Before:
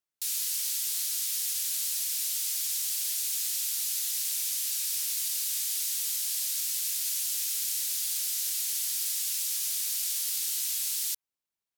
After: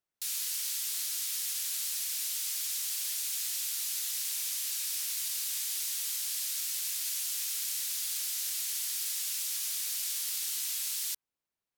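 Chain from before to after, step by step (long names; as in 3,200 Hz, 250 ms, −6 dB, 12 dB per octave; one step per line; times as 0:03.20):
high-shelf EQ 2,500 Hz −7.5 dB
level +3.5 dB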